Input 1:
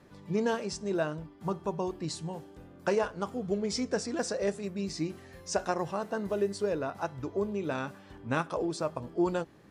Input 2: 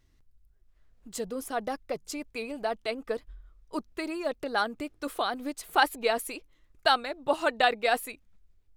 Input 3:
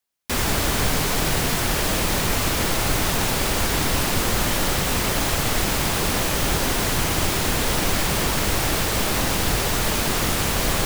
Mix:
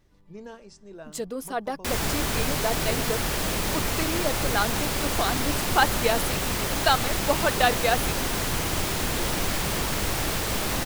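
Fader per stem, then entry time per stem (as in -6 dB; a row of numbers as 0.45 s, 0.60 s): -13.0 dB, +2.0 dB, -5.0 dB; 0.00 s, 0.00 s, 1.55 s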